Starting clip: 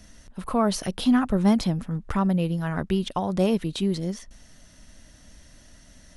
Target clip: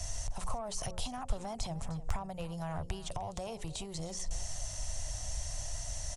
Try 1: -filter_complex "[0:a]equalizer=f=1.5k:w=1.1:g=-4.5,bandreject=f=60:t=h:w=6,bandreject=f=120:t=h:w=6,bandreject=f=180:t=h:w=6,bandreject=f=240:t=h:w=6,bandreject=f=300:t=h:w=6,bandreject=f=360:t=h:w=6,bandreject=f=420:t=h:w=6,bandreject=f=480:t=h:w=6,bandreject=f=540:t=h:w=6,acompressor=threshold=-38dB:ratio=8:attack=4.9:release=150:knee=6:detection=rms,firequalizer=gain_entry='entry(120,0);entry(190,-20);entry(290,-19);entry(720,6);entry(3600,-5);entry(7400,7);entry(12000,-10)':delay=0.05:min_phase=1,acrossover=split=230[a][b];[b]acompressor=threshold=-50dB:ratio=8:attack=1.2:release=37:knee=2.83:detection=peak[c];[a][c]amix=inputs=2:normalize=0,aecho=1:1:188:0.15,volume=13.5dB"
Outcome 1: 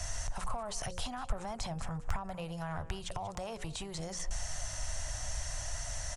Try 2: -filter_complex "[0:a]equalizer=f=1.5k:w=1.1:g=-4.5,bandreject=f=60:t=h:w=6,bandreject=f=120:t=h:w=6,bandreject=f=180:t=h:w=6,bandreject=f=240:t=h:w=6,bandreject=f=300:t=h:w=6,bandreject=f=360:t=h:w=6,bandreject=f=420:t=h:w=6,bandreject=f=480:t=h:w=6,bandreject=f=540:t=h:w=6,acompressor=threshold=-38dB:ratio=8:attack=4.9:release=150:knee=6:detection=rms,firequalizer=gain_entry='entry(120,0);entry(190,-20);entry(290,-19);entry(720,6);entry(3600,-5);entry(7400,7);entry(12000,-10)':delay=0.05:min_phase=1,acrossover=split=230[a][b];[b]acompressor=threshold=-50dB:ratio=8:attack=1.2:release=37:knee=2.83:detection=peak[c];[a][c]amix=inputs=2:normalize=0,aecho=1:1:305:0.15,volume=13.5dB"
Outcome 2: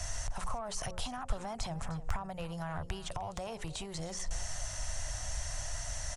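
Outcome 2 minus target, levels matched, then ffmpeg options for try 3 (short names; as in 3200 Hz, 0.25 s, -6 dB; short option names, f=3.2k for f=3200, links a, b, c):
2000 Hz band +5.5 dB
-filter_complex "[0:a]equalizer=f=1.5k:w=1.1:g=-15.5,bandreject=f=60:t=h:w=6,bandreject=f=120:t=h:w=6,bandreject=f=180:t=h:w=6,bandreject=f=240:t=h:w=6,bandreject=f=300:t=h:w=6,bandreject=f=360:t=h:w=6,bandreject=f=420:t=h:w=6,bandreject=f=480:t=h:w=6,bandreject=f=540:t=h:w=6,acompressor=threshold=-38dB:ratio=8:attack=4.9:release=150:knee=6:detection=rms,firequalizer=gain_entry='entry(120,0);entry(190,-20);entry(290,-19);entry(720,6);entry(3600,-5);entry(7400,7);entry(12000,-10)':delay=0.05:min_phase=1,acrossover=split=230[a][b];[b]acompressor=threshold=-50dB:ratio=8:attack=1.2:release=37:knee=2.83:detection=peak[c];[a][c]amix=inputs=2:normalize=0,aecho=1:1:305:0.15,volume=13.5dB"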